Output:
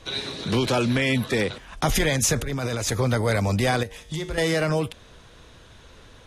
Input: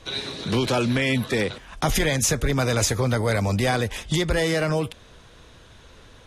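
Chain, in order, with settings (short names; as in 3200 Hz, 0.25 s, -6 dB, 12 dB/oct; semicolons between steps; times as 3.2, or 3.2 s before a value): 2.36–2.92 negative-ratio compressor -27 dBFS, ratio -1; 3.83–4.38 resonator 52 Hz, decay 0.93 s, harmonics odd, mix 70%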